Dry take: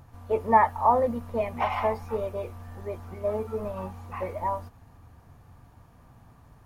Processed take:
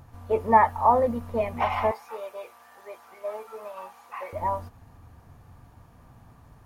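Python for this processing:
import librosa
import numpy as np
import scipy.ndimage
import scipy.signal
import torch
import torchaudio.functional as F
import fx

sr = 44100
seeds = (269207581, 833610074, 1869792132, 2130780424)

y = fx.highpass(x, sr, hz=800.0, slope=12, at=(1.91, 4.33))
y = F.gain(torch.from_numpy(y), 1.5).numpy()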